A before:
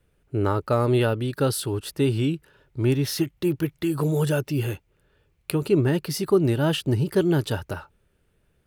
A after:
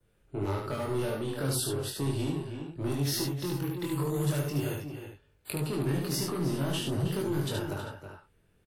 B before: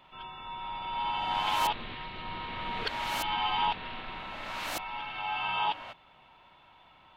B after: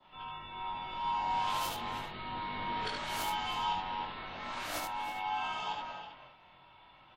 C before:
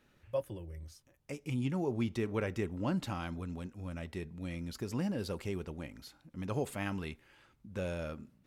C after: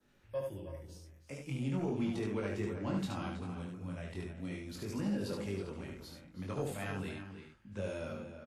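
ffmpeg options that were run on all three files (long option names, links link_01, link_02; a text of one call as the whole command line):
ffmpeg -i in.wav -filter_complex "[0:a]acrossover=split=110|5500[link_01][link_02][link_03];[link_01]acompressor=threshold=-47dB:ratio=6[link_04];[link_02]asoftclip=type=tanh:threshold=-24dB[link_05];[link_04][link_05][link_03]amix=inputs=3:normalize=0,asplit=2[link_06][link_07];[link_07]adelay=320.7,volume=-9dB,highshelf=frequency=4000:gain=-7.22[link_08];[link_06][link_08]amix=inputs=2:normalize=0,acrossover=split=220|3000[link_09][link_10][link_11];[link_10]acompressor=threshold=-30dB:ratio=6[link_12];[link_09][link_12][link_11]amix=inputs=3:normalize=0,adynamicequalizer=threshold=0.00355:dfrequency=2500:dqfactor=1.9:tfrequency=2500:tqfactor=1.9:attack=5:release=100:ratio=0.375:range=2:mode=cutabove:tftype=bell,flanger=delay=20:depth=2.2:speed=0.39,asplit=2[link_13][link_14];[link_14]aecho=0:1:29|73:0.282|0.668[link_15];[link_13][link_15]amix=inputs=2:normalize=0" -ar 48000 -c:a wmav2 -b:a 64k out.wma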